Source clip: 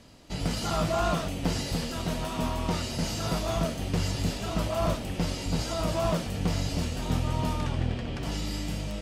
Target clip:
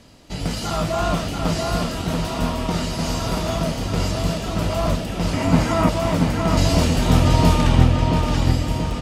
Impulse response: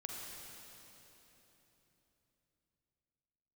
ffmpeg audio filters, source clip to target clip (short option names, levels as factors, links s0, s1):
-filter_complex "[0:a]asettb=1/sr,asplit=3[s0][s1][s2];[s0]atrim=end=5.334[s3];[s1]atrim=start=5.33:end=5.89,asetpts=PTS-STARTPTS,afade=t=in:d=0.004:c=qsin,afade=t=out:st=0.556:d=0.004:c=qsin,equalizer=f=125:t=o:w=1:g=5,equalizer=f=250:t=o:w=1:g=11,equalizer=f=1000:t=o:w=1:g=9,equalizer=f=2000:t=o:w=1:g=9,equalizer=f=4000:t=o:w=1:g=-5[s4];[s2]atrim=start=5.886[s5];[s3][s4]acrossfade=d=0.004:c1=hsin:c2=qsin[s6];[s6][s5]acrossfade=d=0.004:c1=qsin:c2=hsin,asettb=1/sr,asplit=3[s7][s8][s9];[s7]atrim=end=6.574[s10];[s8]atrim=start=6.57:end=7.84,asetpts=PTS-STARTPTS,afade=t=in:d=0.004:c=qsin,afade=t=out:st=1.266:d=0.004:c=qsin,acontrast=88[s11];[s9]atrim=start=7.836[s12];[s10][s11]acrossfade=d=0.004:c1=hsin:c2=qsin[s13];[s13][s12]acrossfade=d=0.004:c1=qsin:c2=hsin,asplit=2[s14][s15];[s15]adelay=683,lowpass=f=4100:p=1,volume=0.708,asplit=2[s16][s17];[s17]adelay=683,lowpass=f=4100:p=1,volume=0.49,asplit=2[s18][s19];[s19]adelay=683,lowpass=f=4100:p=1,volume=0.49,asplit=2[s20][s21];[s21]adelay=683,lowpass=f=4100:p=1,volume=0.49,asplit=2[s22][s23];[s23]adelay=683,lowpass=f=4100:p=1,volume=0.49,asplit=2[s24][s25];[s25]adelay=683,lowpass=f=4100:p=1,volume=0.49[s26];[s14][s16][s18][s20][s22][s24][s26]amix=inputs=7:normalize=0,volume=1.68"